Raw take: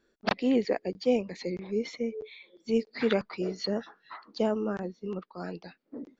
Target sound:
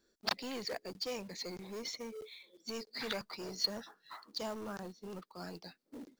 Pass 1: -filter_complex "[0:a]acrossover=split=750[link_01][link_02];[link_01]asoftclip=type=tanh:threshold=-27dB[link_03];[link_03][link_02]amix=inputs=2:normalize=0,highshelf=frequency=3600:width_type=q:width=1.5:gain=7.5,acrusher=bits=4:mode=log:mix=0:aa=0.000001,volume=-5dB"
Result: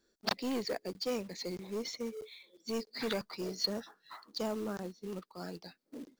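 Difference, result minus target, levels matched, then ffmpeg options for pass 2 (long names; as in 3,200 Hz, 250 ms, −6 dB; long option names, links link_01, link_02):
soft clipping: distortion −6 dB
-filter_complex "[0:a]acrossover=split=750[link_01][link_02];[link_01]asoftclip=type=tanh:threshold=-37.5dB[link_03];[link_03][link_02]amix=inputs=2:normalize=0,highshelf=frequency=3600:width_type=q:width=1.5:gain=7.5,acrusher=bits=4:mode=log:mix=0:aa=0.000001,volume=-5dB"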